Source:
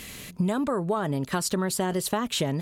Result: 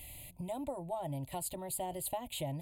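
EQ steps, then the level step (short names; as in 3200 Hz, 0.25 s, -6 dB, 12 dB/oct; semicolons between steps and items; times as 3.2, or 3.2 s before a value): bell 3300 Hz -9.5 dB 1.9 oct; fixed phaser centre 500 Hz, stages 4; fixed phaser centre 1600 Hz, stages 6; -1.0 dB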